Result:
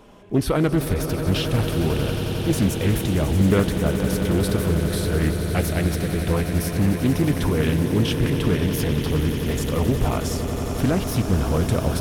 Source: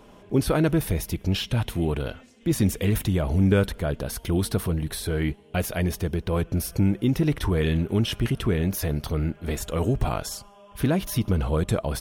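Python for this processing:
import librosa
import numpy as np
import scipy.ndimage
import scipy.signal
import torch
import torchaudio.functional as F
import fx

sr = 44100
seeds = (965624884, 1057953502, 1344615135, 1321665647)

y = fx.echo_swell(x, sr, ms=90, loudest=8, wet_db=-12.5)
y = fx.doppler_dist(y, sr, depth_ms=0.41)
y = F.gain(torch.from_numpy(y), 1.5).numpy()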